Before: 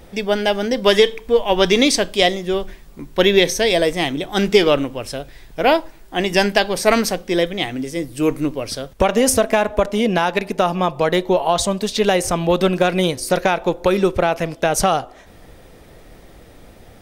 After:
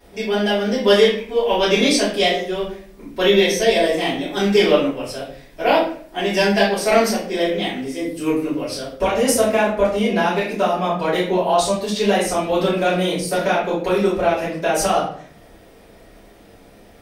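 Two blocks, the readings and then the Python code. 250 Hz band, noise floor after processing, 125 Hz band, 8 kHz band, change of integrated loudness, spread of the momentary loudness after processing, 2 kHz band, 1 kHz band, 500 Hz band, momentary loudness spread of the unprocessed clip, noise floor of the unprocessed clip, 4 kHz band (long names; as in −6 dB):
−0.5 dB, −47 dBFS, −2.5 dB, −2.5 dB, −0.5 dB, 9 LU, −1.0 dB, −0.5 dB, −0.5 dB, 9 LU, −44 dBFS, −1.5 dB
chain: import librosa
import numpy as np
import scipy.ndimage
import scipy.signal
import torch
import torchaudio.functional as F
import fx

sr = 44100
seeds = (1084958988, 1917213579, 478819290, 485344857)

y = fx.highpass(x, sr, hz=190.0, slope=6)
y = fx.room_shoebox(y, sr, seeds[0], volume_m3=60.0, walls='mixed', distance_m=3.0)
y = y * librosa.db_to_amplitude(-13.5)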